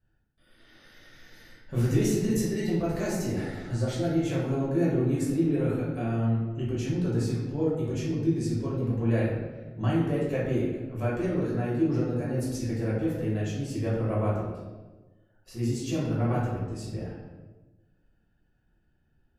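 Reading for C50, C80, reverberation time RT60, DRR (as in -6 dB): 0.5 dB, 3.5 dB, 1.2 s, -8.0 dB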